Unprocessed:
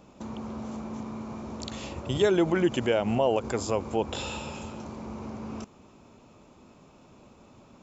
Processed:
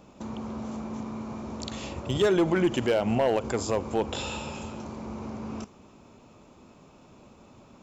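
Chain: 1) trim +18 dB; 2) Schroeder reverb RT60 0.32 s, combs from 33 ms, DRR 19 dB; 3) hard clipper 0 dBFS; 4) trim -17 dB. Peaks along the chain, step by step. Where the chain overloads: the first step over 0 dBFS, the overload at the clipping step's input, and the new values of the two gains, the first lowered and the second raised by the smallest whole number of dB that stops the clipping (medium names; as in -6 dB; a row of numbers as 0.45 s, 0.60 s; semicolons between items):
+5.5 dBFS, +5.5 dBFS, 0.0 dBFS, -17.0 dBFS; step 1, 5.5 dB; step 1 +12 dB, step 4 -11 dB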